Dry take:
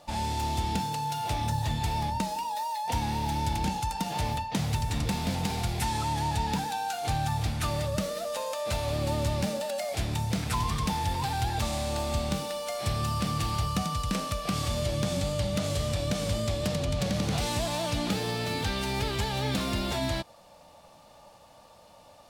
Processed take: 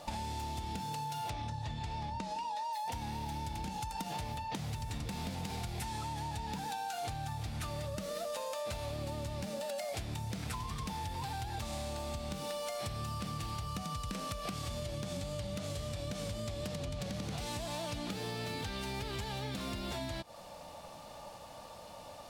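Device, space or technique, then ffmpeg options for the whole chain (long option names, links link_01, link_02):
serial compression, peaks first: -filter_complex "[0:a]asettb=1/sr,asplit=3[link_01][link_02][link_03];[link_01]atrim=end=1.304[link_04];[link_02]atrim=start=1.3:end=2.73,asetpts=PTS-STARTPTS,afade=type=in:duration=0.004:curve=qsin,afade=type=out:start_time=1.426:duration=0.004:curve=qsin,lowpass=6000[link_05];[link_03]atrim=start=2.726[link_06];[link_04][link_05]acrossfade=duration=0.004:curve1=hsin:curve2=qsin[link_07];[link_07][link_06]acrossfade=duration=0.004:curve1=qsin:curve2=hsin,acompressor=threshold=-35dB:ratio=6,acompressor=threshold=-42dB:ratio=3,volume=4.5dB"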